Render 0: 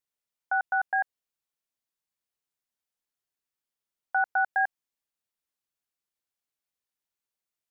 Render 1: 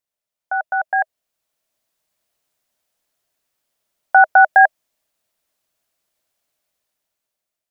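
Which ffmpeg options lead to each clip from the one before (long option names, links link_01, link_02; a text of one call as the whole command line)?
ffmpeg -i in.wav -af "equalizer=frequency=630:width=5.1:gain=10.5,dynaudnorm=framelen=380:gausssize=7:maxgain=12.5dB,volume=2.5dB" out.wav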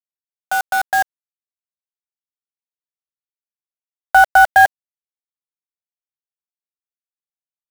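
ffmpeg -i in.wav -filter_complex "[0:a]bass=frequency=250:gain=-11,treble=frequency=4000:gain=-15,asplit=2[link_01][link_02];[link_02]asoftclip=type=tanh:threshold=-15.5dB,volume=-4dB[link_03];[link_01][link_03]amix=inputs=2:normalize=0,acrusher=bits=3:mix=0:aa=0.000001,volume=-1dB" out.wav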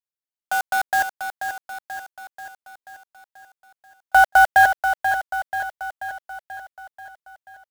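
ffmpeg -i in.wav -af "aecho=1:1:485|970|1455|1940|2425|2910|3395:0.398|0.227|0.129|0.0737|0.042|0.024|0.0137,volume=-3.5dB" out.wav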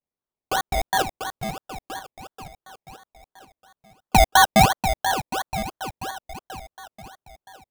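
ffmpeg -i in.wav -af "acrusher=samples=24:mix=1:aa=0.000001:lfo=1:lforange=14.4:lforate=2.9,volume=-1.5dB" out.wav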